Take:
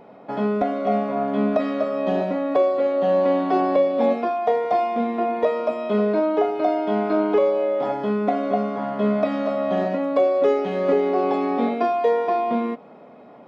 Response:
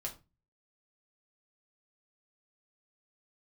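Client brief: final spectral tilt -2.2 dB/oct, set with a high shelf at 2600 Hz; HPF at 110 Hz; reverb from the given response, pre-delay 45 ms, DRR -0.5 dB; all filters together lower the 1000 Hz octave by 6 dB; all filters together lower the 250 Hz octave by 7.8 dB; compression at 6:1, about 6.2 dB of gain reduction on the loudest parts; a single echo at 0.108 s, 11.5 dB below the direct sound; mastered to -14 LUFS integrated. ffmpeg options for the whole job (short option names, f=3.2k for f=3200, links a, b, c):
-filter_complex "[0:a]highpass=110,equalizer=f=250:t=o:g=-9,equalizer=f=1k:t=o:g=-8,highshelf=f=2.6k:g=-6.5,acompressor=threshold=-25dB:ratio=6,aecho=1:1:108:0.266,asplit=2[a][b];[1:a]atrim=start_sample=2205,adelay=45[c];[b][c]afir=irnorm=-1:irlink=0,volume=1dB[d];[a][d]amix=inputs=2:normalize=0,volume=9dB"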